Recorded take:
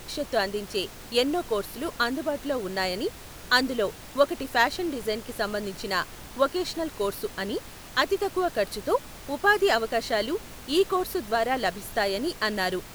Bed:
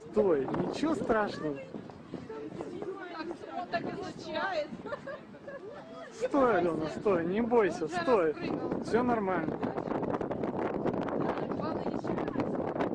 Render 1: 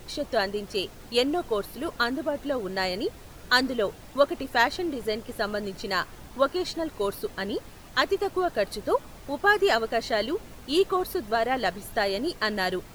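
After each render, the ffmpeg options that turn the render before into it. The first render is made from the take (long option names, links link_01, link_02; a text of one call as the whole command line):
ffmpeg -i in.wav -af "afftdn=noise_reduction=7:noise_floor=-44" out.wav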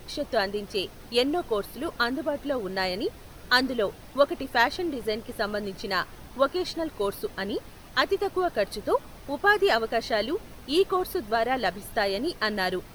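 ffmpeg -i in.wav -af "equalizer=frequency=7200:width=7:gain=-9.5" out.wav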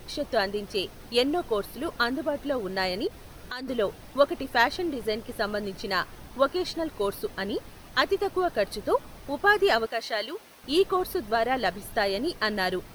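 ffmpeg -i in.wav -filter_complex "[0:a]asettb=1/sr,asplit=3[link_01][link_02][link_03];[link_01]atrim=end=3.074[link_04];[link_02]atrim=start=3.07:end=3.68,asetpts=PTS-STARTPTS,afade=type=in:duration=0.004:curve=qsin,afade=type=out:start_time=0.606:duration=0.004:curve=qsin,acompressor=threshold=-33dB:ratio=5:attack=3.2:release=140:knee=1:detection=peak[link_05];[link_03]atrim=start=3.676[link_06];[link_04][link_05]acrossfade=duration=0.004:curve1=hsin:curve2=qsin[link_07];[link_07][link_06]acrossfade=duration=0.004:curve1=qsin:curve2=hsin,asettb=1/sr,asplit=3[link_08][link_09][link_10];[link_08]atrim=end=9.864[link_11];[link_09]atrim=start=9.86:end=10.64,asetpts=PTS-STARTPTS,afade=type=in:duration=0.004:curve=qsin,afade=type=out:start_time=0.776:duration=0.004:curve=qsin,highpass=frequency=860:poles=1[link_12];[link_10]atrim=start=10.636[link_13];[link_11][link_12]acrossfade=duration=0.004:curve1=hsin:curve2=qsin[link_14];[link_14][link_13]acrossfade=duration=0.004:curve1=qsin:curve2=hsin" out.wav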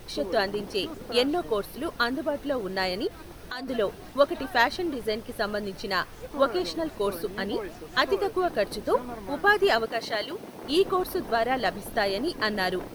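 ffmpeg -i in.wav -i bed.wav -filter_complex "[1:a]volume=-9dB[link_01];[0:a][link_01]amix=inputs=2:normalize=0" out.wav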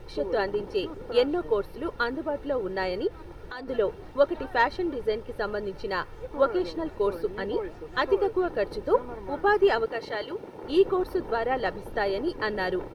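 ffmpeg -i in.wav -af "lowpass=frequency=1400:poles=1,aecho=1:1:2.2:0.49" out.wav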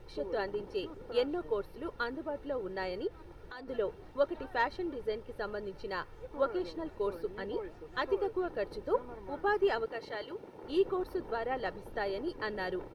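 ffmpeg -i in.wav -af "volume=-8dB" out.wav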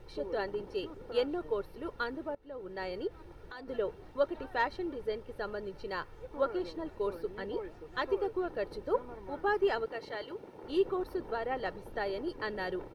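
ffmpeg -i in.wav -filter_complex "[0:a]asplit=2[link_01][link_02];[link_01]atrim=end=2.35,asetpts=PTS-STARTPTS,afade=type=out:start_time=2.346:duration=0.004:curve=hsin:silence=0.0749894[link_03];[link_02]atrim=start=2.35,asetpts=PTS-STARTPTS,afade=type=in:duration=0.81:curve=qsin:silence=0.0749894[link_04];[link_03][link_04]concat=n=2:v=0:a=1" out.wav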